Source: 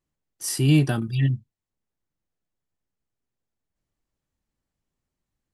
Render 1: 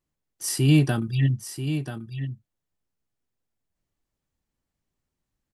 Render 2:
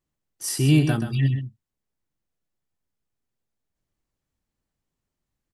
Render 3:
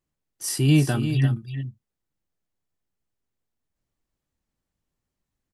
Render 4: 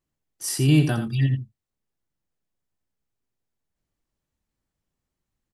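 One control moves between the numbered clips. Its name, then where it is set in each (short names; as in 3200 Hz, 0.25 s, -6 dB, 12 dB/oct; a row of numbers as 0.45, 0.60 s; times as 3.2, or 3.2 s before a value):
echo, time: 986, 129, 346, 84 ms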